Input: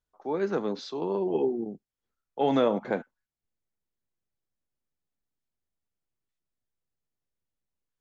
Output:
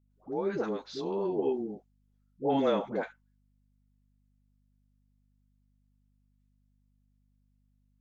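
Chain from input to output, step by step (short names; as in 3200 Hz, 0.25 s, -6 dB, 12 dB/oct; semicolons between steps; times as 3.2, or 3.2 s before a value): dispersion highs, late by 0.109 s, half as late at 550 Hz; buzz 50 Hz, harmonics 5, -67 dBFS -5 dB/oct; gain -3 dB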